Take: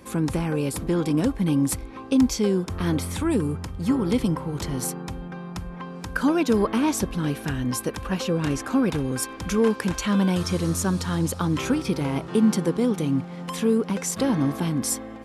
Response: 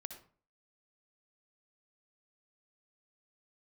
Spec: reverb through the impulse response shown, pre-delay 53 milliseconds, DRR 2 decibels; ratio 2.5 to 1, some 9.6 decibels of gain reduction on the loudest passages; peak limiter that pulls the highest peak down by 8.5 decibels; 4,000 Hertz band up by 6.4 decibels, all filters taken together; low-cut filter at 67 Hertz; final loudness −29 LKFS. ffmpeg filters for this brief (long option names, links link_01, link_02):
-filter_complex "[0:a]highpass=67,equalizer=frequency=4000:width_type=o:gain=8.5,acompressor=threshold=-30dB:ratio=2.5,alimiter=limit=-22.5dB:level=0:latency=1,asplit=2[link_01][link_02];[1:a]atrim=start_sample=2205,adelay=53[link_03];[link_02][link_03]afir=irnorm=-1:irlink=0,volume=1.5dB[link_04];[link_01][link_04]amix=inputs=2:normalize=0,volume=1dB"